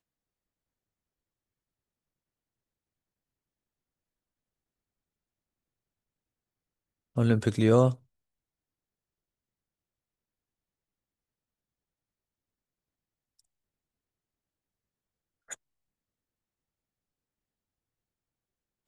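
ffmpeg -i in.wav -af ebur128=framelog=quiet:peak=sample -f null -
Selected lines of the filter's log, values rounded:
Integrated loudness:
  I:         -25.2 LUFS
  Threshold: -37.1 LUFS
Loudness range:
  LRA:         7.2 LU
  Threshold: -53.1 LUFS
  LRA low:   -36.7 LUFS
  LRA high:  -29.5 LUFS
Sample peak:
  Peak:       -8.3 dBFS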